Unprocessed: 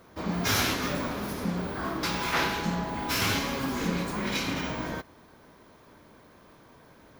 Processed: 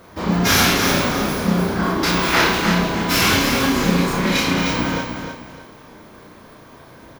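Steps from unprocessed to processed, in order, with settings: doubling 33 ms -2 dB; feedback delay 305 ms, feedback 31%, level -6.5 dB; trim +8.5 dB

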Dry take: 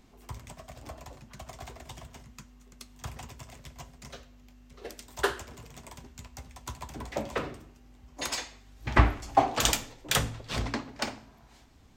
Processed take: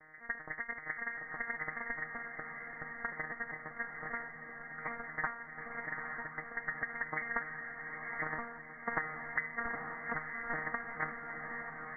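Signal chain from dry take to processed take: vocoder on a broken chord bare fifth, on D#3, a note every 195 ms; steep high-pass 810 Hz 48 dB/octave; compression 12:1, threshold -50 dBFS, peak gain reduction 27 dB; on a send: echo that smears into a reverb 901 ms, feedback 50%, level -5 dB; on the sum: frequency inversion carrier 2.8 kHz; trim +16.5 dB

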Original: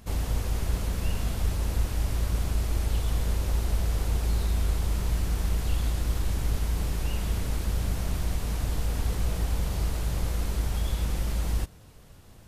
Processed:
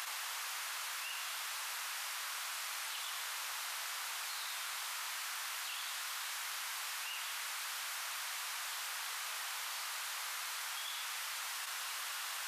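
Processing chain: high-pass 1.1 kHz 24 dB/octave; treble shelf 5.8 kHz -4.5 dB; level flattener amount 100%

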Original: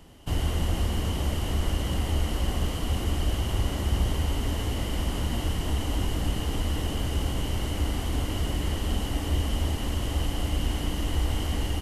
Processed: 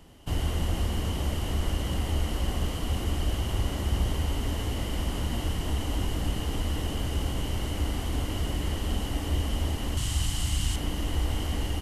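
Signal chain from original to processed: 9.97–10.76 s: graphic EQ 125/250/500/4000/8000 Hz +6/-4/-11/+5/+11 dB; trim -1.5 dB

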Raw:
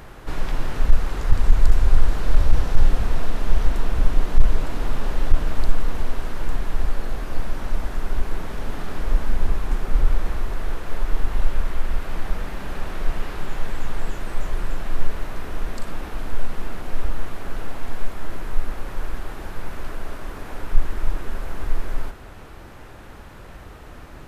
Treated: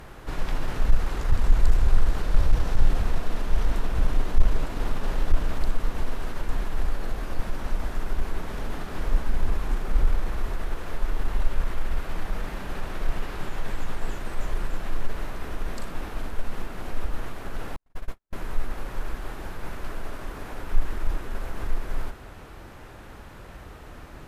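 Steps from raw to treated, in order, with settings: Chebyshev shaper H 4 -39 dB, 5 -32 dB, 8 -36 dB, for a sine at -2 dBFS; 17.76–18.33 s: gate -20 dBFS, range -56 dB; trim -3 dB

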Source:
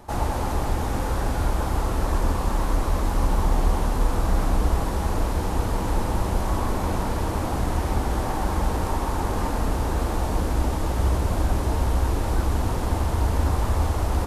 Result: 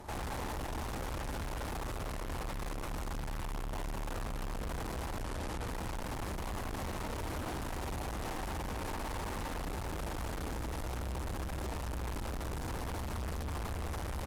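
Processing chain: valve stage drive 38 dB, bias 0.55; 5.22–5.67 s: low-pass 12 kHz 12 dB/octave; delay 208 ms -13.5 dB; trim +1 dB

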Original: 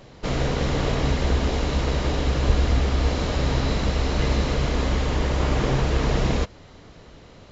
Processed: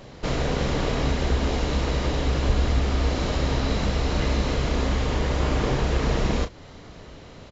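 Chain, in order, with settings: in parallel at +1 dB: compression, threshold -29 dBFS, peak gain reduction 15.5 dB; on the sum: doubling 34 ms -9 dB; trim -4 dB

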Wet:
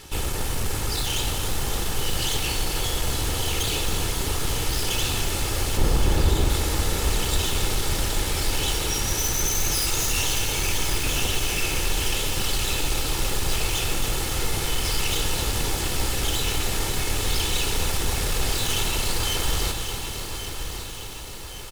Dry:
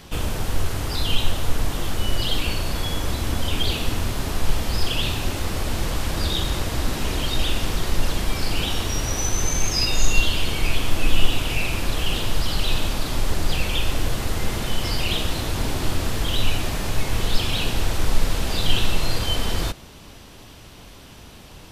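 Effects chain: comb filter that takes the minimum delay 2.3 ms; peaking EQ 9.6 kHz +6.5 dB 1.6 oct; wavefolder -19.5 dBFS; 5.77–6.50 s: tilt shelf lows +8 dB, about 1.4 kHz; feedback delay 1122 ms, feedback 56%, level -10 dB; bit-crushed delay 271 ms, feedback 80%, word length 7-bit, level -9 dB

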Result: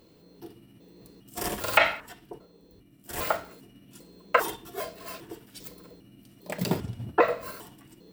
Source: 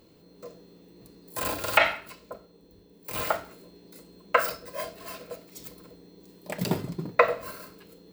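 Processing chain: pitch shift switched off and on -6.5 st, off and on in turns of 400 ms

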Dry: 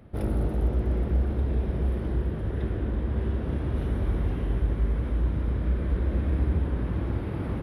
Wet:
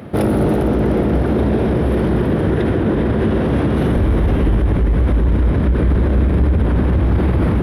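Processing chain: high-pass 140 Hz 12 dB/octave, from 3.96 s 50 Hz; saturation -22.5 dBFS, distortion -16 dB; filtered feedback delay 403 ms, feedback 74%, low-pass 2 kHz, level -6.5 dB; loudness maximiser +28 dB; trim -7.5 dB

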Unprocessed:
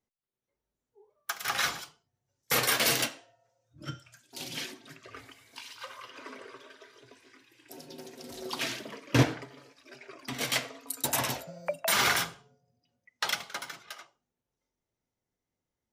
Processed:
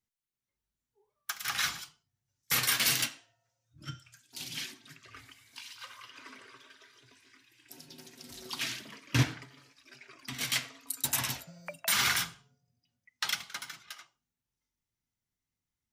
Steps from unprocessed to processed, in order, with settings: peaking EQ 520 Hz -14.5 dB 1.7 oct

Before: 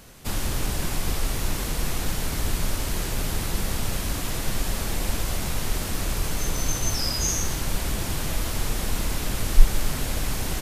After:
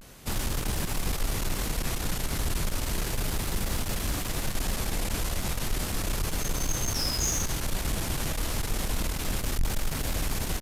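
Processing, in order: valve stage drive 20 dB, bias 0.35; vibrato 0.33 Hz 45 cents

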